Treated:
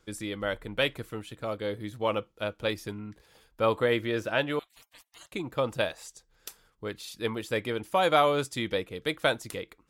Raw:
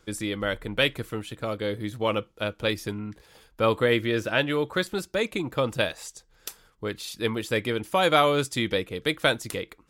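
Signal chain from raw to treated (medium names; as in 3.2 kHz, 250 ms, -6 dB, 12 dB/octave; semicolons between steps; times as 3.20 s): 4.59–5.32 s: spectral gate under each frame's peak -30 dB weak; dynamic bell 770 Hz, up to +5 dB, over -34 dBFS, Q 0.94; trim -5.5 dB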